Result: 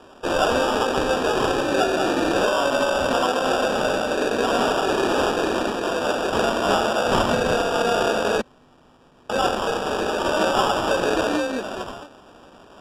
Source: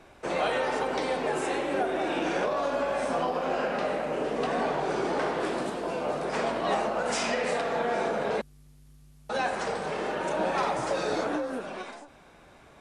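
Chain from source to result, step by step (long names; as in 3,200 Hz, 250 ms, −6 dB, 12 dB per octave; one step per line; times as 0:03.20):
Butterworth high-pass 190 Hz 48 dB per octave
high shelf with overshoot 5,200 Hz +7.5 dB, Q 1.5
decimation without filtering 21×
high-frequency loss of the air 62 metres
level +8 dB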